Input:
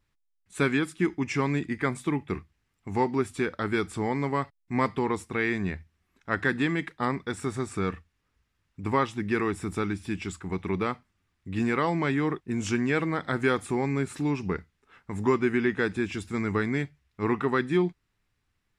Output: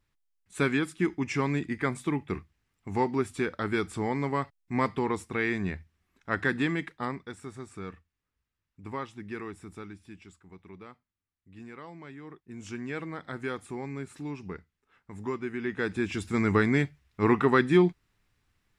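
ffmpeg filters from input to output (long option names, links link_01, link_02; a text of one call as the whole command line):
ffmpeg -i in.wav -af "volume=21dB,afade=type=out:start_time=6.68:duration=0.71:silence=0.334965,afade=type=out:start_time=9.34:duration=1.1:silence=0.398107,afade=type=in:start_time=12.23:duration=0.71:silence=0.334965,afade=type=in:start_time=15.57:duration=0.9:silence=0.223872" out.wav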